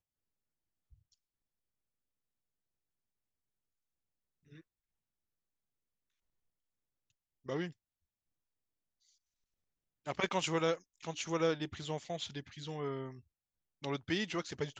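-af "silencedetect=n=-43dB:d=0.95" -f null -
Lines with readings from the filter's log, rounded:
silence_start: 0.00
silence_end: 7.48 | silence_duration: 7.48
silence_start: 7.70
silence_end: 10.07 | silence_duration: 2.37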